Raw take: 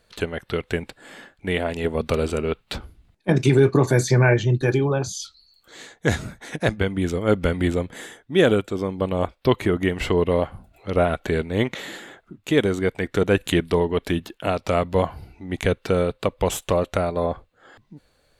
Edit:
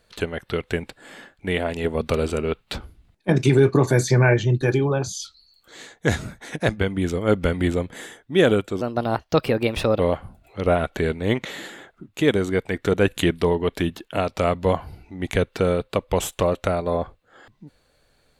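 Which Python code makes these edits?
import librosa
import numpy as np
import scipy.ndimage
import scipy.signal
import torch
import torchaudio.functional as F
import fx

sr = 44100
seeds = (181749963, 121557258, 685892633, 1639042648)

y = fx.edit(x, sr, fx.speed_span(start_s=8.81, length_s=1.48, speed=1.25), tone=tone)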